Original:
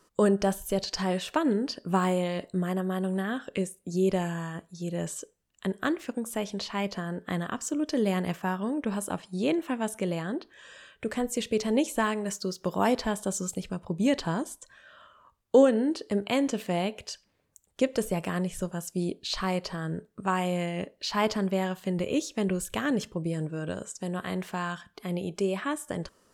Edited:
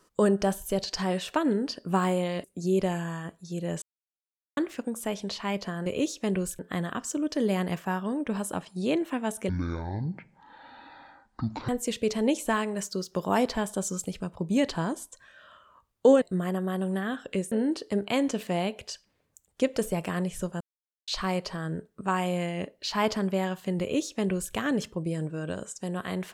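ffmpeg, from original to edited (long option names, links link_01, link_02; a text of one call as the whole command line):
ffmpeg -i in.wav -filter_complex "[0:a]asplit=12[link_01][link_02][link_03][link_04][link_05][link_06][link_07][link_08][link_09][link_10][link_11][link_12];[link_01]atrim=end=2.442[link_13];[link_02]atrim=start=3.738:end=5.12,asetpts=PTS-STARTPTS,afade=type=out:start_time=1.378:duration=0.004:curve=hsin[link_14];[link_03]atrim=start=5.12:end=5.87,asetpts=PTS-STARTPTS,volume=0[link_15];[link_04]atrim=start=5.87:end=7.162,asetpts=PTS-STARTPTS,afade=type=in:duration=0.004:curve=hsin[link_16];[link_05]atrim=start=21.998:end=22.732[link_17];[link_06]atrim=start=7.158:end=10.064[link_18];[link_07]atrim=start=10.06:end=11.18,asetpts=PTS-STARTPTS,asetrate=22491,aresample=44100,atrim=end_sample=96847,asetpts=PTS-STARTPTS[link_19];[link_08]atrim=start=11.176:end=15.712[link_20];[link_09]atrim=start=2.438:end=3.742[link_21];[link_10]atrim=start=15.708:end=18.8,asetpts=PTS-STARTPTS,afade=type=out:start_time=3.088:duration=0.004:curve=hsin[link_22];[link_11]atrim=start=18.8:end=19.27,asetpts=PTS-STARTPTS,volume=0[link_23];[link_12]atrim=start=19.27,asetpts=PTS-STARTPTS,afade=type=in:duration=0.004:curve=hsin[link_24];[link_14][link_15][link_16]concat=n=3:v=0:a=1[link_25];[link_13][link_25]acrossfade=duration=0.004:curve1=hsin:curve2=hsin[link_26];[link_26][link_17]acrossfade=duration=0.004:curve1=hsin:curve2=hsin[link_27];[link_27][link_18]acrossfade=duration=0.004:curve1=hsin:curve2=hsin[link_28];[link_28][link_19]acrossfade=duration=0.004:curve1=hsin:curve2=hsin[link_29];[link_29][link_20]acrossfade=duration=0.004:curve1=hsin:curve2=hsin[link_30];[link_30][link_21]acrossfade=duration=0.004:curve1=hsin:curve2=hsin[link_31];[link_22][link_23][link_24]concat=n=3:v=0:a=1[link_32];[link_31][link_32]acrossfade=duration=0.004:curve1=hsin:curve2=hsin" out.wav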